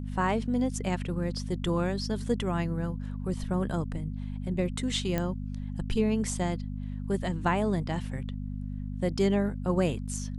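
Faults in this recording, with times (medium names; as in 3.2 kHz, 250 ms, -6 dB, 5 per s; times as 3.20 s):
hum 50 Hz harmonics 5 -35 dBFS
5.18 s: pop -15 dBFS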